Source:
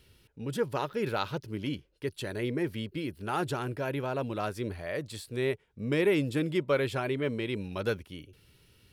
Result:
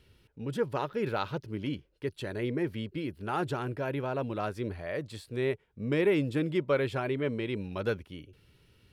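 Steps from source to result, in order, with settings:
high-shelf EQ 4,600 Hz −9.5 dB

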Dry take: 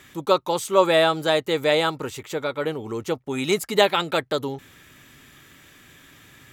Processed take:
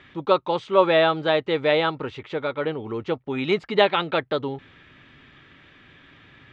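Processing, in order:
low-pass filter 3,600 Hz 24 dB per octave

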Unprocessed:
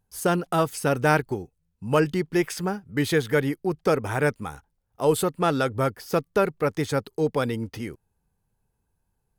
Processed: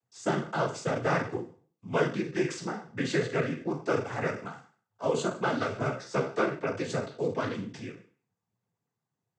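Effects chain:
peak hold with a decay on every bin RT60 0.44 s
cochlear-implant simulation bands 16
0:05.74–0:06.55: double-tracking delay 15 ms −5 dB
level −7 dB

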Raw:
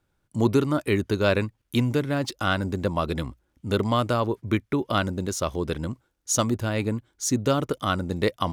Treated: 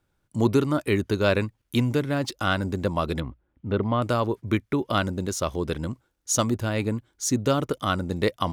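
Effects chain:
0:03.20–0:04.02: high-frequency loss of the air 430 metres

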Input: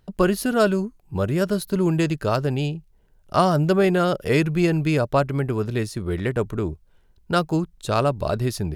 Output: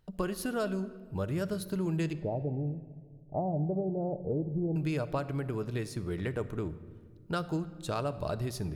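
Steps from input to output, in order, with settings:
0:02.13–0:04.76: Chebyshev low-pass filter 850 Hz, order 6
downward compressor 3 to 1, threshold −22 dBFS, peak gain reduction 7.5 dB
rectangular room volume 2,300 cubic metres, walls mixed, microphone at 0.5 metres
level −8 dB

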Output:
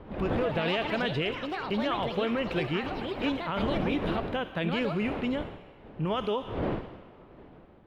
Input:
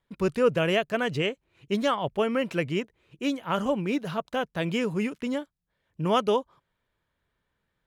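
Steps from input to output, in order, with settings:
wind on the microphone 460 Hz −35 dBFS
on a send at −17.5 dB: spectral tilt +4 dB per octave + convolution reverb RT60 2.2 s, pre-delay 15 ms
on the sum: brickwall limiter −21.5 dBFS, peak gain reduction 11 dB
delay with pitch and tempo change per echo 148 ms, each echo +5 semitones, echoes 3, each echo −6 dB
high shelf with overshoot 4,700 Hz −11.5 dB, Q 1.5

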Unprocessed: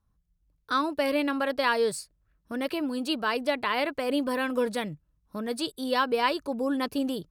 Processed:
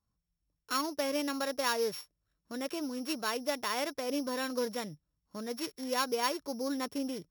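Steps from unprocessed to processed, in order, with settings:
samples sorted by size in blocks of 8 samples
low-shelf EQ 76 Hz −11 dB
level −6 dB

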